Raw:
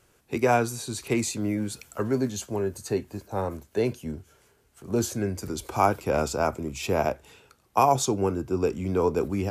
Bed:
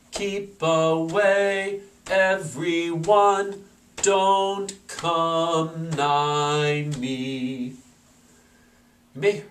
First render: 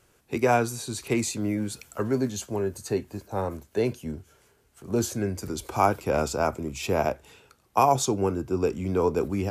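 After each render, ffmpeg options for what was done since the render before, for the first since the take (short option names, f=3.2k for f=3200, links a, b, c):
-af anull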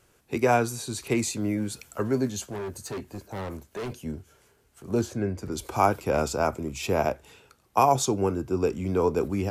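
-filter_complex "[0:a]asettb=1/sr,asplit=3[a][b][c];[a]atrim=end=2.424[d];[b]atrim=start=2.42:end=4,asetpts=PTS-STARTPTS,afade=t=in:d=0.004:c=qsin,afade=t=out:st=1.576:d=0.004:c=qsin,asoftclip=type=hard:threshold=-31dB[e];[c]atrim=start=3.996[f];[d][e]acrossfade=d=0.004:c1=hsin:c2=qsin[g];[g][f]acrossfade=d=0.004:c1=qsin:c2=hsin,asettb=1/sr,asplit=3[h][i][j];[h]atrim=end=5.014[k];[i]atrim=start=5.01:end=5.52,asetpts=PTS-STARTPTS,afade=t=in:d=0.004:c=qsin,afade=t=out:st=0.506:d=0.004:c=qsin,lowpass=f=2.3k:p=1[l];[j]atrim=start=5.516[m];[k][l]acrossfade=d=0.004:c1=hsin:c2=qsin[n];[n][m]acrossfade=d=0.004:c1=qsin:c2=hsin"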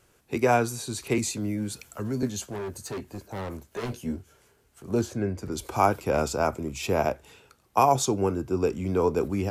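-filter_complex "[0:a]asettb=1/sr,asplit=3[a][b][c];[a]atrim=end=1.184[d];[b]atrim=start=1.18:end=2.23,asetpts=PTS-STARTPTS,afade=t=in:d=0.004:c=qsin,afade=t=out:st=1.046:d=0.004:c=qsin,acrossover=split=270|3000[e][f][g];[f]acompressor=threshold=-35dB:ratio=6:attack=3.2:release=140:knee=2.83:detection=peak[h];[e][h][g]amix=inputs=3:normalize=0[i];[c]atrim=start=2.226[j];[d][i]acrossfade=d=0.004:c1=hsin:c2=qsin[k];[k][j]acrossfade=d=0.004:c1=qsin:c2=hsin,asettb=1/sr,asplit=3[l][m][n];[l]atrim=end=3.704[o];[m]atrim=start=3.7:end=4.17,asetpts=PTS-STARTPTS,afade=t=in:d=0.004:c=qsin,afade=t=out:st=0.466:d=0.004:c=qsin,asplit=2[p][q];[q]adelay=17,volume=-3dB[r];[p][r]amix=inputs=2:normalize=0,atrim=end_sample=20727[s];[n]atrim=start=4.166[t];[o][s]acrossfade=d=0.004:c1=hsin:c2=qsin[u];[u][t]acrossfade=d=0.004:c1=qsin:c2=hsin"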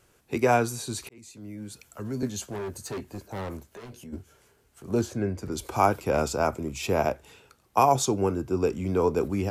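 -filter_complex "[0:a]asplit=3[a][b][c];[a]afade=t=out:st=3.71:d=0.02[d];[b]acompressor=threshold=-44dB:ratio=3:attack=3.2:release=140:knee=1:detection=peak,afade=t=in:st=3.71:d=0.02,afade=t=out:st=4.12:d=0.02[e];[c]afade=t=in:st=4.12:d=0.02[f];[d][e][f]amix=inputs=3:normalize=0,asplit=2[g][h];[g]atrim=end=1.09,asetpts=PTS-STARTPTS,afade=t=out:st=1.086:d=0.004:c=hsin[i];[h]atrim=start=1.09,asetpts=PTS-STARTPTS,afade=t=in:d=1.41[j];[i][j]concat=n=2:v=0:a=1"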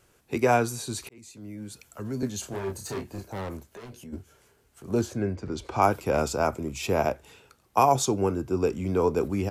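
-filter_complex "[0:a]asplit=3[a][b][c];[a]afade=t=out:st=2.42:d=0.02[d];[b]asplit=2[e][f];[f]adelay=31,volume=-4dB[g];[e][g]amix=inputs=2:normalize=0,afade=t=in:st=2.42:d=0.02,afade=t=out:st=3.31:d=0.02[h];[c]afade=t=in:st=3.31:d=0.02[i];[d][h][i]amix=inputs=3:normalize=0,asettb=1/sr,asplit=3[j][k][l];[j]atrim=end=5.354[m];[k]atrim=start=5.35:end=5.82,asetpts=PTS-STARTPTS,afade=t=in:d=0.004:c=qsin,afade=t=out:st=0.466:d=0.004:c=qsin,lowpass=4.8k[n];[l]atrim=start=5.816[o];[m][n]acrossfade=d=0.004:c1=hsin:c2=qsin[p];[p][o]acrossfade=d=0.004:c1=qsin:c2=hsin"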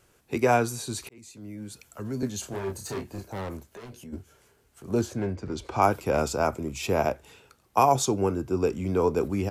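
-filter_complex "[0:a]asettb=1/sr,asplit=3[a][b][c];[a]atrim=end=5.184[d];[b]atrim=start=5.18:end=5.67,asetpts=PTS-STARTPTS,afade=t=in:d=0.004:c=qsin,afade=t=out:st=0.486:d=0.004:c=qsin,asoftclip=type=hard:threshold=-23.5dB[e];[c]atrim=start=5.666[f];[d][e]acrossfade=d=0.004:c1=hsin:c2=qsin[g];[g][f]acrossfade=d=0.004:c1=qsin:c2=hsin"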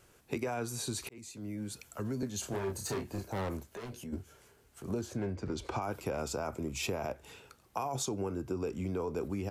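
-af "alimiter=limit=-17dB:level=0:latency=1:release=21,acompressor=threshold=-32dB:ratio=6"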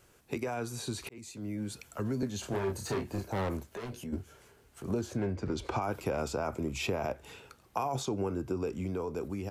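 -filter_complex "[0:a]acrossover=split=4400[a][b];[a]dynaudnorm=f=180:g=11:m=3dB[c];[b]alimiter=level_in=12dB:limit=-24dB:level=0:latency=1:release=195,volume=-12dB[d];[c][d]amix=inputs=2:normalize=0"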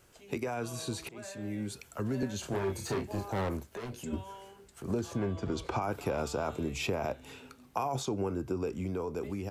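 -filter_complex "[1:a]volume=-28.5dB[a];[0:a][a]amix=inputs=2:normalize=0"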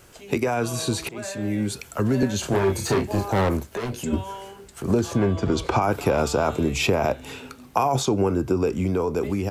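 -af "volume=11.5dB"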